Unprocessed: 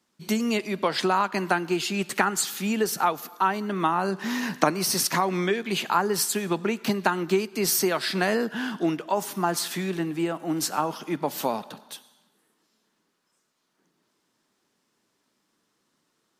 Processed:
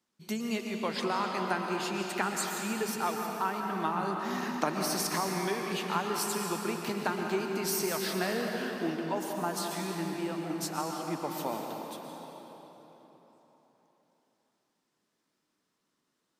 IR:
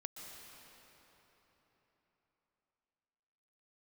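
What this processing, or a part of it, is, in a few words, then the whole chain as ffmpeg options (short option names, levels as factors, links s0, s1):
cathedral: -filter_complex "[1:a]atrim=start_sample=2205[s0];[0:a][s0]afir=irnorm=-1:irlink=0,volume=0.631"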